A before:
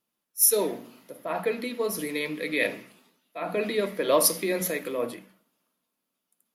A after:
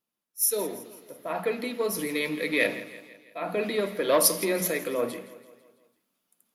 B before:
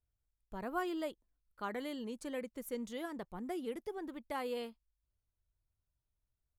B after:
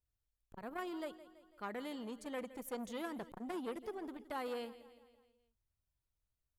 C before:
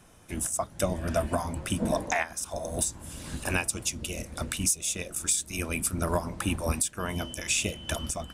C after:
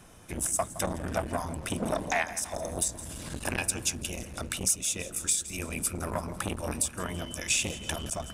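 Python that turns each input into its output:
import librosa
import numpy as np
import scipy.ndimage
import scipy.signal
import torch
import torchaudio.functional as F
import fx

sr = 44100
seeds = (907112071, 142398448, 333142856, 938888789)

y = fx.rider(x, sr, range_db=5, speed_s=2.0)
y = fx.echo_feedback(y, sr, ms=166, feedback_pct=53, wet_db=-16.5)
y = fx.transformer_sat(y, sr, knee_hz=940.0)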